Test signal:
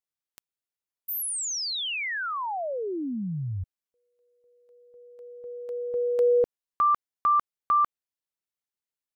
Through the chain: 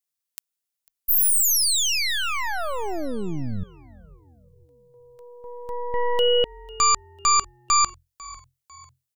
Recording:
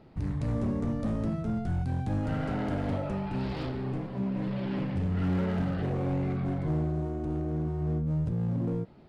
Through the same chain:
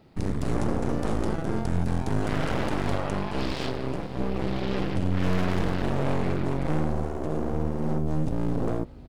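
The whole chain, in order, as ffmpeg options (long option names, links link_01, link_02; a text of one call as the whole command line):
ffmpeg -i in.wav -filter_complex "[0:a]aeval=exprs='0.141*(cos(1*acos(clip(val(0)/0.141,-1,1)))-cos(1*PI/2))+0.00562*(cos(3*acos(clip(val(0)/0.141,-1,1)))-cos(3*PI/2))+0.0501*(cos(6*acos(clip(val(0)/0.141,-1,1)))-cos(6*PI/2))':channel_layout=same,highshelf=frequency=3700:gain=11,asplit=4[link_01][link_02][link_03][link_04];[link_02]adelay=498,afreqshift=-43,volume=-21dB[link_05];[link_03]adelay=996,afreqshift=-86,volume=-28.3dB[link_06];[link_04]adelay=1494,afreqshift=-129,volume=-35.7dB[link_07];[link_01][link_05][link_06][link_07]amix=inputs=4:normalize=0" out.wav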